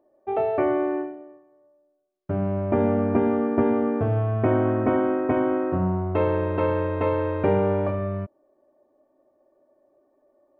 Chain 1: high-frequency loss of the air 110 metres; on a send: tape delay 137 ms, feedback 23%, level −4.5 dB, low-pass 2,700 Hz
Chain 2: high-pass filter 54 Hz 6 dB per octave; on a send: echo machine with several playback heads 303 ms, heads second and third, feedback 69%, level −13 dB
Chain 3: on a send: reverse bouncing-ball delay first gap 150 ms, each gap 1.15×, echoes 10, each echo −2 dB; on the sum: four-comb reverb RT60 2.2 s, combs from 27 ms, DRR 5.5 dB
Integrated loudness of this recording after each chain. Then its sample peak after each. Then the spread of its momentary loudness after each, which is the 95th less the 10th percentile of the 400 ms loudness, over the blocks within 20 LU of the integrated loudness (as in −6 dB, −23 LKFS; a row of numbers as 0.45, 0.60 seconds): −23.0, −24.0, −19.5 LKFS; −8.0, −9.0, −5.0 dBFS; 8, 13, 14 LU